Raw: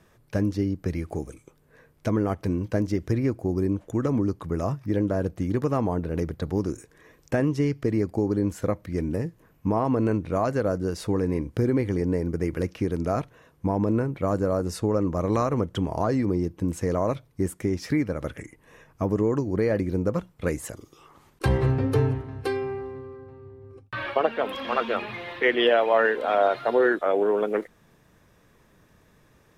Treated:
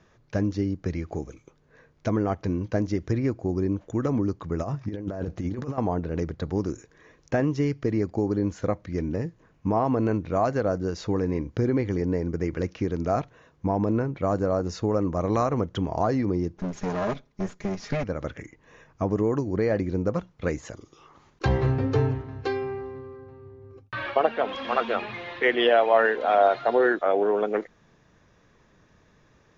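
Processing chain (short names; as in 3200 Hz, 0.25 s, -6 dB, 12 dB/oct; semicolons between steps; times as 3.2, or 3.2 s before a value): 16.57–18.04 minimum comb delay 4.9 ms; dynamic EQ 730 Hz, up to +5 dB, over -39 dBFS, Q 4.8; 4.6–5.78 negative-ratio compressor -28 dBFS, ratio -0.5; Chebyshev low-pass 7000 Hz, order 8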